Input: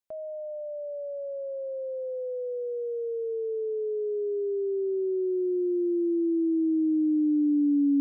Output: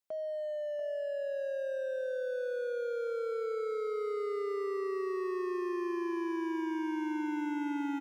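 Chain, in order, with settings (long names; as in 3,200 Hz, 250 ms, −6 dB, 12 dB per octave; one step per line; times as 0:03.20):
high-pass filter 160 Hz 12 dB per octave
hard clipping −34 dBFS, distortion −6 dB
on a send: repeating echo 689 ms, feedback 23%, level −9 dB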